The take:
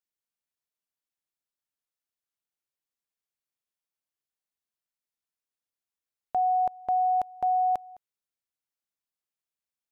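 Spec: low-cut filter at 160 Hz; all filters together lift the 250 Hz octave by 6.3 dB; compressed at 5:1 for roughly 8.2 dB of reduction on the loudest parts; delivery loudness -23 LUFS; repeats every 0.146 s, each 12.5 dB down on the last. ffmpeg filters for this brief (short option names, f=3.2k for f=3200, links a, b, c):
-af "highpass=160,equalizer=f=250:t=o:g=9,acompressor=threshold=-31dB:ratio=5,aecho=1:1:146|292|438:0.237|0.0569|0.0137,volume=11dB"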